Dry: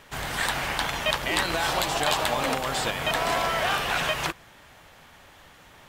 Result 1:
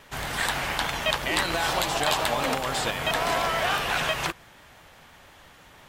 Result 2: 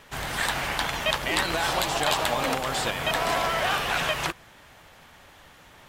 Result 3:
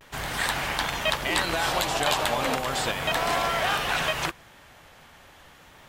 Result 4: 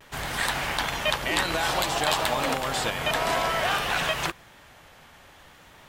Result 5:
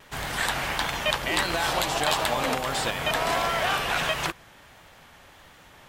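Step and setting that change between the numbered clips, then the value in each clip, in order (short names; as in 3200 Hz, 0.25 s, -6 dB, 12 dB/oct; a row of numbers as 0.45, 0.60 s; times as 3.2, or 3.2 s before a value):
vibrato, rate: 5.9, 14, 0.35, 0.55, 1.5 Hz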